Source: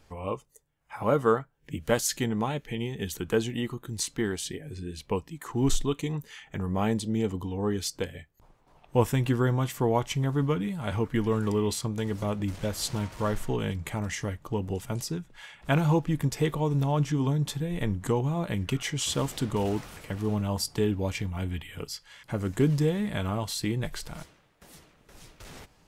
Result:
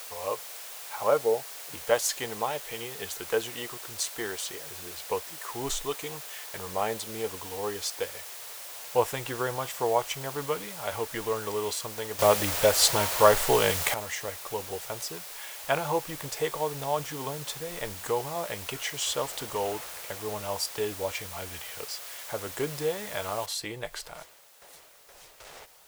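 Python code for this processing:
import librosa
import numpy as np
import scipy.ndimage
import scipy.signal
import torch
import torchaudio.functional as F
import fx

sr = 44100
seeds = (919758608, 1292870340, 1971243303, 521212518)

y = fx.spec_erase(x, sr, start_s=1.18, length_s=0.55, low_hz=920.0, high_hz=7800.0)
y = fx.noise_floor_step(y, sr, seeds[0], at_s=23.46, before_db=-42, after_db=-57, tilt_db=0.0)
y = fx.edit(y, sr, fx.clip_gain(start_s=12.19, length_s=1.75, db=10.5), tone=tone)
y = fx.low_shelf_res(y, sr, hz=360.0, db=-13.5, q=1.5)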